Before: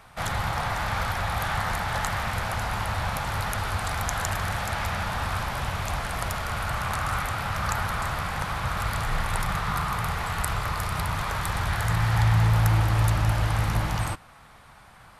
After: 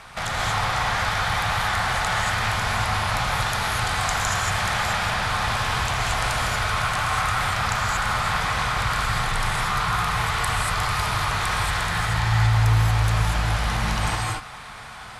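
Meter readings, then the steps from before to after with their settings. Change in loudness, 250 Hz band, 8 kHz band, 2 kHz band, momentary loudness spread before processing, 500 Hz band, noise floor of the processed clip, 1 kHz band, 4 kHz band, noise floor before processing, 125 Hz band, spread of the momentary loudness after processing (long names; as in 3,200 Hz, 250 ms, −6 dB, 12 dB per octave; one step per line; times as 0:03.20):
+4.0 dB, +1.0 dB, +6.0 dB, +6.5 dB, 7 LU, +3.0 dB, −39 dBFS, +5.0 dB, +8.5 dB, −51 dBFS, +1.0 dB, 3 LU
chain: low-pass filter 8,600 Hz 12 dB per octave
tilt shelving filter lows −3.5 dB, about 1,200 Hz
in parallel at +2 dB: compressor whose output falls as the input rises −35 dBFS, ratio −1
on the sum: surface crackle 20 per second −55 dBFS
reverb whose tail is shaped and stops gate 260 ms rising, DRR −2.5 dB
level −3.5 dB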